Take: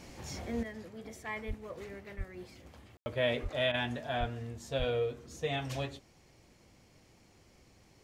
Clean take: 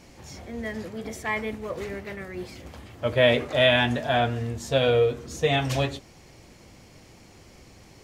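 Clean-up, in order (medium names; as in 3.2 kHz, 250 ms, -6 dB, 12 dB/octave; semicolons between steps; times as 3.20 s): de-plosive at 1.47/2.17/3.42/4.19/4.78 s; room tone fill 2.97–3.06 s; interpolate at 3.72 s, 18 ms; trim 0 dB, from 0.63 s +11.5 dB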